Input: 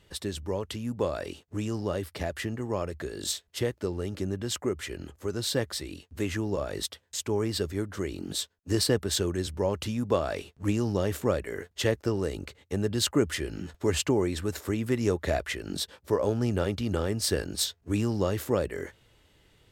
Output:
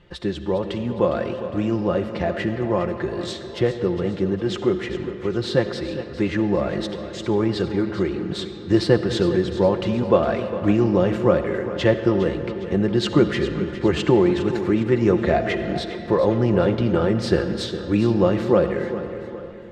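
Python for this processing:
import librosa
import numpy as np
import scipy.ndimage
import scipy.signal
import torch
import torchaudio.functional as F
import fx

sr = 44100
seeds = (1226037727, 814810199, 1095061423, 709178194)

y = scipy.signal.sosfilt(scipy.signal.butter(2, 3900.0, 'lowpass', fs=sr, output='sos'), x)
y = fx.high_shelf(y, sr, hz=3000.0, db=-8.5)
y = y + 0.54 * np.pad(y, (int(5.7 * sr / 1000.0), 0))[:len(y)]
y = fx.echo_feedback(y, sr, ms=408, feedback_pct=44, wet_db=-12.5)
y = fx.rev_freeverb(y, sr, rt60_s=3.2, hf_ratio=0.55, predelay_ms=25, drr_db=9.0)
y = F.gain(torch.from_numpy(y), 8.0).numpy()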